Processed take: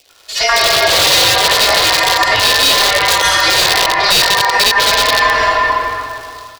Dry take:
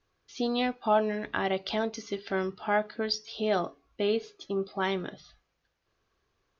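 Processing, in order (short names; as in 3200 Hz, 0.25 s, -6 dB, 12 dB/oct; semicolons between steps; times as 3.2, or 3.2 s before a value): minimum comb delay 2.8 ms; crackle 270/s -54 dBFS; LFO notch saw down 9.2 Hz 620–3500 Hz; harmonic-percussive split harmonic +5 dB; bands offset in time highs, lows 90 ms, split 750 Hz; ring modulator 1400 Hz; reverb RT60 2.3 s, pre-delay 95 ms, DRR -2 dB; AGC gain up to 7 dB; wrapped overs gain 15 dB; compressor 4:1, threshold -32 dBFS, peak gain reduction 11.5 dB; graphic EQ 250/500/4000 Hz -9/+11/+10 dB; maximiser +22 dB; gain -1 dB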